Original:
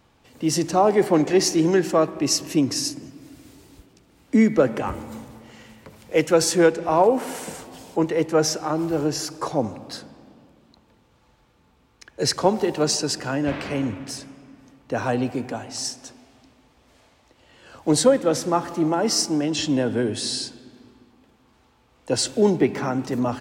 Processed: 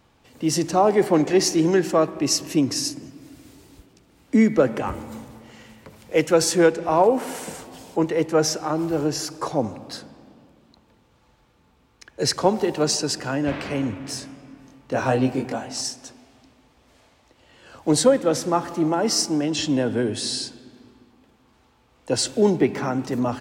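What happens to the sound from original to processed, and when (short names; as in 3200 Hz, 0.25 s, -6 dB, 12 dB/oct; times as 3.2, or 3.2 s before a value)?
14.02–15.81 doubler 23 ms -2 dB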